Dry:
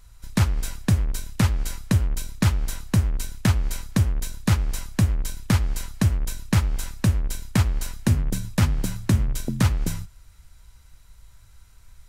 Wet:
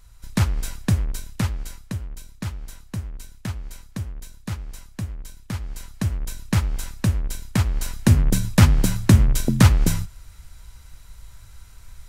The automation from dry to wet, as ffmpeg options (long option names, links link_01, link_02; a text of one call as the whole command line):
ffmpeg -i in.wav -af "volume=16.5dB,afade=type=out:start_time=0.91:duration=1.06:silence=0.316228,afade=type=in:start_time=5.51:duration=1.04:silence=0.334965,afade=type=in:start_time=7.64:duration=0.69:silence=0.446684" out.wav